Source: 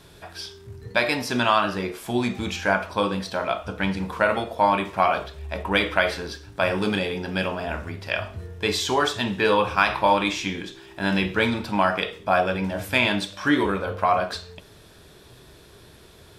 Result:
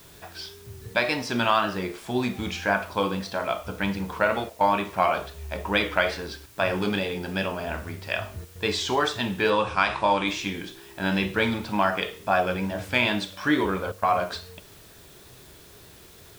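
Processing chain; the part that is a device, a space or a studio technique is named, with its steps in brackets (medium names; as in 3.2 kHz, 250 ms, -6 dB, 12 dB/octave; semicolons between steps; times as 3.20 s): worn cassette (low-pass 7.9 kHz; wow and flutter; level dips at 4.50/6.46/8.45/13.92 s, 103 ms -12 dB; white noise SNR 26 dB); 9.50–10.28 s: elliptic low-pass 9.5 kHz, stop band 40 dB; trim -2 dB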